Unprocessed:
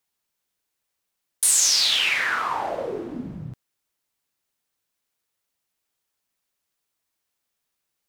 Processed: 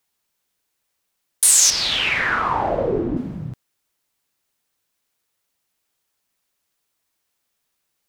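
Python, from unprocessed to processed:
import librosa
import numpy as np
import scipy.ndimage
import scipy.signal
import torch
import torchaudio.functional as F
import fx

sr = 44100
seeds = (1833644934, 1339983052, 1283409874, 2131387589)

y = fx.riaa(x, sr, side='playback', at=(1.7, 3.17))
y = y * 10.0 ** (5.0 / 20.0)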